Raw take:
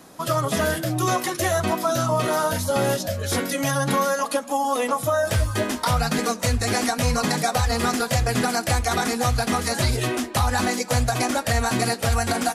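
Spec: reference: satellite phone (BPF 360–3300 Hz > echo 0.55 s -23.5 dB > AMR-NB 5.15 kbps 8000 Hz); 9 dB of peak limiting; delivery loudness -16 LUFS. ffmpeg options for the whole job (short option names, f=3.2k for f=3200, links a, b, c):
-af "alimiter=limit=-19dB:level=0:latency=1,highpass=360,lowpass=3.3k,aecho=1:1:550:0.0668,volume=17dB" -ar 8000 -c:a libopencore_amrnb -b:a 5150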